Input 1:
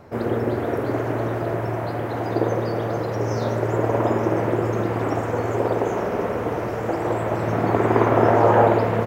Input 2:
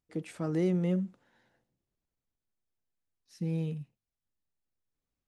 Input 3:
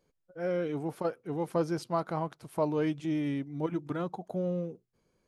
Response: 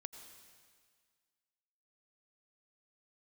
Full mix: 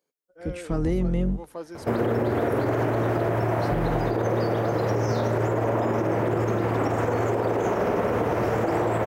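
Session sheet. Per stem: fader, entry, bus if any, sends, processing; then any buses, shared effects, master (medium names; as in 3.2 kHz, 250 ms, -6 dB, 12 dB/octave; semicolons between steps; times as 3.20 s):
-6.5 dB, 1.75 s, bus A, no send, none
-5.5 dB, 0.30 s, bus A, no send, octave divider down 2 oct, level 0 dB
-8.0 dB, 0.00 s, no bus, send -8.5 dB, high-pass 290 Hz 12 dB/octave; treble shelf 8.2 kHz +9.5 dB
bus A: 0.0 dB, level rider gain up to 13 dB; peak limiter -11.5 dBFS, peak gain reduction 10 dB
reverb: on, RT60 1.8 s, pre-delay 78 ms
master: compression, threshold -20 dBFS, peak gain reduction 5.5 dB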